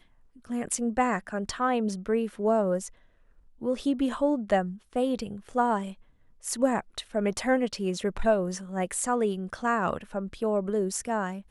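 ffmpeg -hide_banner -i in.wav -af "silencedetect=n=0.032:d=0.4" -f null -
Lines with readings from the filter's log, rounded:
silence_start: 0.00
silence_end: 0.51 | silence_duration: 0.51
silence_start: 2.86
silence_end: 3.63 | silence_duration: 0.77
silence_start: 5.89
silence_end: 6.46 | silence_duration: 0.57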